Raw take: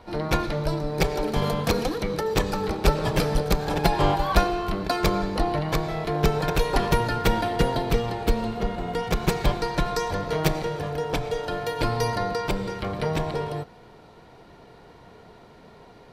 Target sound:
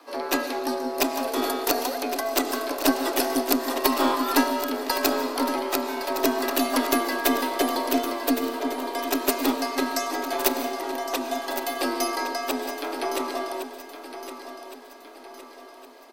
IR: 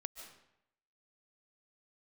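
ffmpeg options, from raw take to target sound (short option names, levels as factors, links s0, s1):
-filter_complex "[0:a]asplit=2[s0][s1];[1:a]atrim=start_sample=2205[s2];[s1][s2]afir=irnorm=-1:irlink=0,volume=1.41[s3];[s0][s3]amix=inputs=2:normalize=0,afreqshift=230,aemphasis=mode=production:type=50fm,aeval=exprs='2.37*(cos(1*acos(clip(val(0)/2.37,-1,1)))-cos(1*PI/2))+0.0944*(cos(6*acos(clip(val(0)/2.37,-1,1)))-cos(6*PI/2))':c=same,asplit=2[s4][s5];[s5]aecho=0:1:1113|2226|3339|4452|5565:0.282|0.13|0.0596|0.0274|0.0126[s6];[s4][s6]amix=inputs=2:normalize=0,volume=0.398"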